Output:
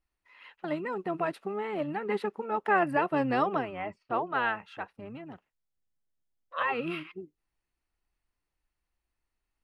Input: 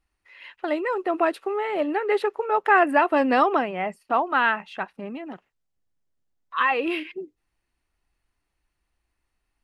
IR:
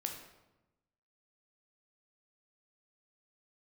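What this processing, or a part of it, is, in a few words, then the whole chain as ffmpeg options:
octave pedal: -filter_complex "[0:a]asettb=1/sr,asplit=3[s0][s1][s2];[s0]atrim=end=3.804[s3];[s1]atrim=start=3.8:end=4.49,asetpts=PTS-STARTPTS,afade=t=in:d=0.004:c=qsin,afade=t=out:st=0.686:d=0.004:c=qsin,lowpass=f=5700:w=0.5412,lowpass=f=5700:w=1.3066[s4];[s2]atrim=start=4.486[s5];[s3][s4]acrossfade=d=0.004:c1=hsin:c2=qsin[s6];[s6][s5]acrossfade=d=0.004:c1=qsin:c2=hsin,asplit=2[s7][s8];[s8]asetrate=22050,aresample=44100,atempo=2,volume=0.398[s9];[s7][s9]amix=inputs=2:normalize=0,volume=0.376"

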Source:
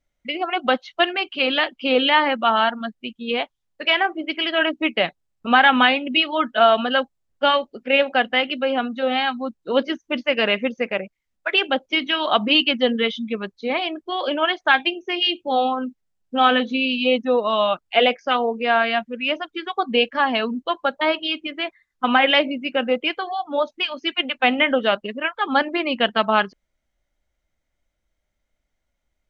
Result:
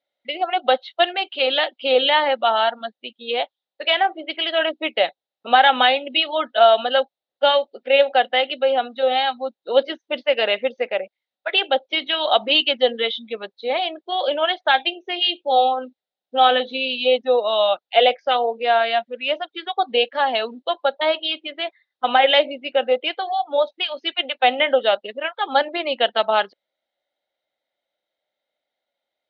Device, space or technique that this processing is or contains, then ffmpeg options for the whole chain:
phone earpiece: -af "highpass=470,equalizer=f=540:t=q:w=4:g=6,equalizer=f=760:t=q:w=4:g=5,equalizer=f=1100:t=q:w=4:g=-7,equalizer=f=1600:t=q:w=4:g=-3,equalizer=f=2400:t=q:w=4:g=-4,equalizer=f=3800:t=q:w=4:g=9,lowpass=f=4300:w=0.5412,lowpass=f=4300:w=1.3066"

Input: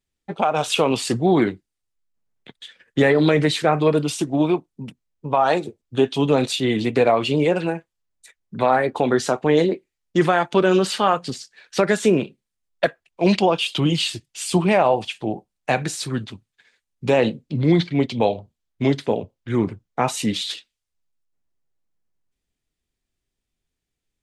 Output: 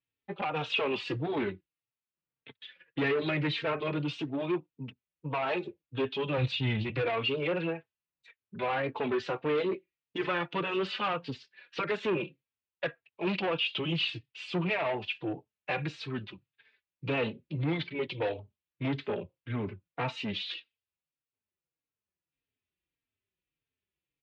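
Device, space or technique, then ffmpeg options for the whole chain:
barber-pole flanger into a guitar amplifier: -filter_complex "[0:a]asplit=2[s0][s1];[s1]adelay=3.8,afreqshift=-1.7[s2];[s0][s2]amix=inputs=2:normalize=1,asoftclip=type=tanh:threshold=0.1,highpass=89,equalizer=f=220:t=q:w=4:g=-7,equalizer=f=720:t=q:w=4:g=-6,equalizer=f=2600:t=q:w=4:g=6,lowpass=f=3700:w=0.5412,lowpass=f=3700:w=1.3066,asplit=3[s3][s4][s5];[s3]afade=t=out:st=6.37:d=0.02[s6];[s4]asubboost=boost=11:cutoff=100,afade=t=in:st=6.37:d=0.02,afade=t=out:st=7.02:d=0.02[s7];[s5]afade=t=in:st=7.02:d=0.02[s8];[s6][s7][s8]amix=inputs=3:normalize=0,volume=0.631"

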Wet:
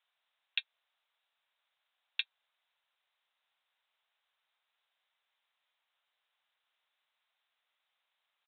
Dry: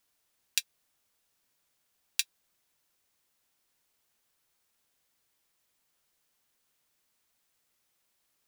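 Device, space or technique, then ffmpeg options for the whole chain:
musical greeting card: -af "aresample=8000,aresample=44100,highpass=f=650:w=0.5412,highpass=f=650:w=1.3066,equalizer=f=3900:t=o:w=0.34:g=6.5,volume=0.891"

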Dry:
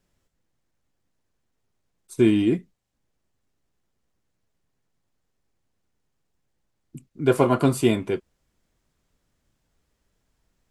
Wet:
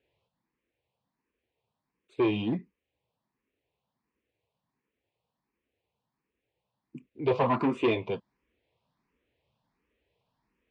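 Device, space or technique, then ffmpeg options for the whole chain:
barber-pole phaser into a guitar amplifier: -filter_complex "[0:a]asplit=2[s0][s1];[s1]afreqshift=1.4[s2];[s0][s2]amix=inputs=2:normalize=1,asoftclip=type=tanh:threshold=0.0891,highpass=82,equalizer=f=90:t=q:w=4:g=-5,equalizer=f=160:t=q:w=4:g=-4,equalizer=f=470:t=q:w=4:g=5,equalizer=f=970:t=q:w=4:g=6,equalizer=f=1400:t=q:w=4:g=-7,equalizer=f=2500:t=q:w=4:g=6,lowpass=f=4000:w=0.5412,lowpass=f=4000:w=1.3066"

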